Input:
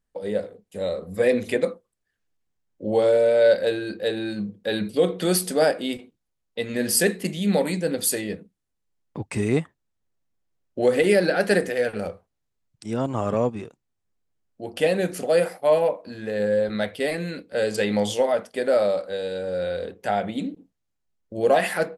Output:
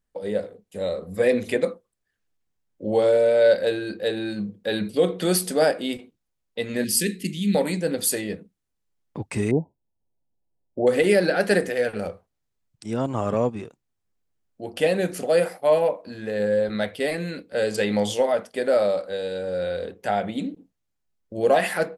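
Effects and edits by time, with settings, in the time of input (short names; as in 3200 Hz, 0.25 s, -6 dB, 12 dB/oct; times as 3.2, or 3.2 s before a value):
6.84–7.55 Chebyshev band-stop 290–2500 Hz
9.51–10.87 brick-wall FIR low-pass 1000 Hz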